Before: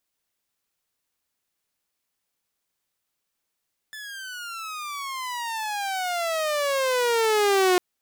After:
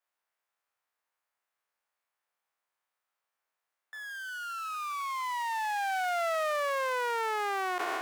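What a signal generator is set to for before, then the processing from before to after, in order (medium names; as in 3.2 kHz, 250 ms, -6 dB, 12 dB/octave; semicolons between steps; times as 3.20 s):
gliding synth tone saw, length 3.85 s, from 1.75 kHz, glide -27.5 st, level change +19 dB, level -14 dB
spectral sustain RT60 1.50 s; three-band isolator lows -22 dB, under 580 Hz, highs -15 dB, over 2 kHz; peak limiter -23.5 dBFS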